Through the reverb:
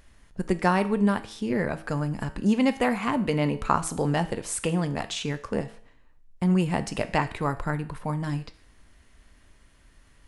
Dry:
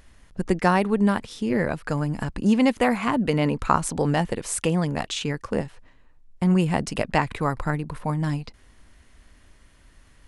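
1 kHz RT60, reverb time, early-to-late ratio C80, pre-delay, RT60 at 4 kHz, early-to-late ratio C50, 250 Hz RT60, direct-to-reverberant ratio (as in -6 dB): 0.55 s, 0.55 s, 19.0 dB, 4 ms, 0.55 s, 16.0 dB, 0.55 s, 10.5 dB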